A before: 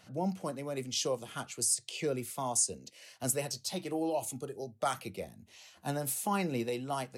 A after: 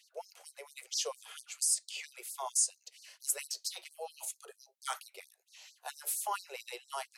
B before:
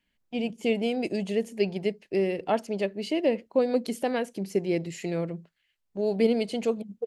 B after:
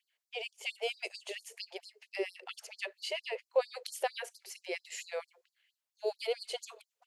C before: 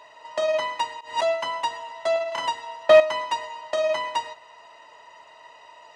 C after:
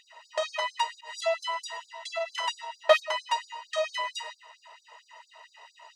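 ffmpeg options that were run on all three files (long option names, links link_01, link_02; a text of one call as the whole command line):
ffmpeg -i in.wav -af "lowshelf=frequency=460:gain=-8,afftfilt=real='re*gte(b*sr/1024,350*pow(4200/350,0.5+0.5*sin(2*PI*4.4*pts/sr)))':imag='im*gte(b*sr/1024,350*pow(4200/350,0.5+0.5*sin(2*PI*4.4*pts/sr)))':win_size=1024:overlap=0.75" out.wav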